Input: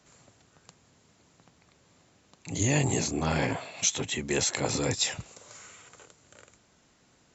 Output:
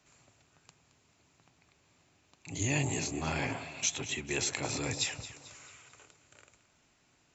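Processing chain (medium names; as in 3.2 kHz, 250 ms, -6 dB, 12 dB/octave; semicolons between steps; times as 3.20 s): graphic EQ with 31 bands 200 Hz -7 dB, 500 Hz -6 dB, 2.5 kHz +6 dB; echo whose repeats swap between lows and highs 110 ms, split 1 kHz, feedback 65%, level -10.5 dB; trim -5.5 dB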